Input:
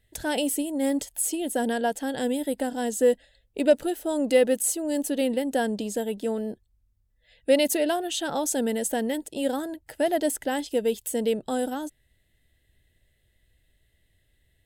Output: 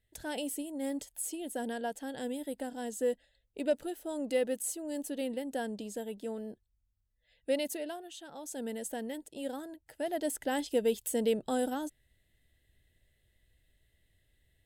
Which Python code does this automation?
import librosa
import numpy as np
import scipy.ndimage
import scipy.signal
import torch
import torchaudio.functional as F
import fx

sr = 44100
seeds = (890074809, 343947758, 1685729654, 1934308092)

y = fx.gain(x, sr, db=fx.line((7.51, -10.5), (8.31, -20.0), (8.67, -11.5), (10.01, -11.5), (10.59, -4.0)))